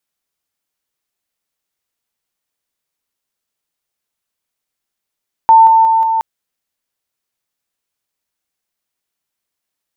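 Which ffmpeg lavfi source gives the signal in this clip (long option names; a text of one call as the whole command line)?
ffmpeg -f lavfi -i "aevalsrc='pow(10,(-2.5-3*floor(t/0.18))/20)*sin(2*PI*897*t)':duration=0.72:sample_rate=44100" out.wav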